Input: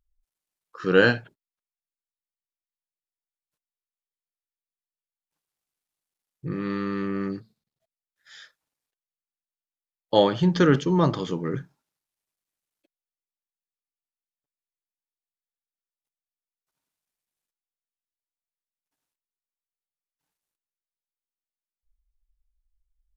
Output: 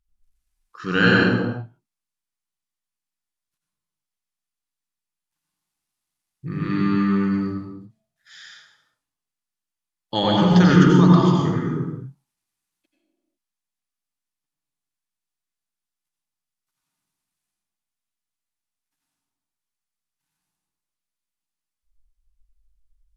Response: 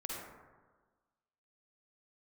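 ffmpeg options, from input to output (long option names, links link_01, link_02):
-filter_complex "[0:a]equalizer=frequency=510:width_type=o:width=1:gain=-13[link_01];[1:a]atrim=start_sample=2205,afade=type=out:start_time=0.34:duration=0.01,atrim=end_sample=15435,asetrate=25137,aresample=44100[link_02];[link_01][link_02]afir=irnorm=-1:irlink=0,volume=4dB"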